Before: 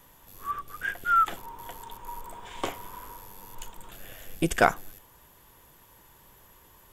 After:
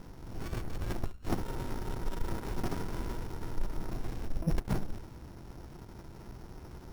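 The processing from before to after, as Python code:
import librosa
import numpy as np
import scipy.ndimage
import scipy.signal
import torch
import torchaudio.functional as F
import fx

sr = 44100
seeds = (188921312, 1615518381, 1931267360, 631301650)

p1 = np.r_[np.sort(x[:len(x) // 8 * 8].reshape(-1, 8), axis=1).ravel(), x[len(x) // 8 * 8:]]
p2 = fx.peak_eq(p1, sr, hz=4500.0, db=-10.5, octaves=1.1)
p3 = fx.hum_notches(p2, sr, base_hz=50, count=4)
p4 = fx.over_compress(p3, sr, threshold_db=-33.0, ratio=-0.5)
p5 = fx.tilt_shelf(p4, sr, db=5.0, hz=1300.0)
p6 = fx.small_body(p5, sr, hz=(350.0, 1400.0, 2600.0), ring_ms=45, db=6)
p7 = 10.0 ** (-25.5 / 20.0) * np.tanh(p6 / 10.0 ** (-25.5 / 20.0))
p8 = p7 + fx.echo_feedback(p7, sr, ms=71, feedback_pct=17, wet_db=-19.5, dry=0)
p9 = np.repeat(p8[::4], 4)[:len(p8)]
p10 = fx.running_max(p9, sr, window=65)
y = p10 * librosa.db_to_amplitude(6.0)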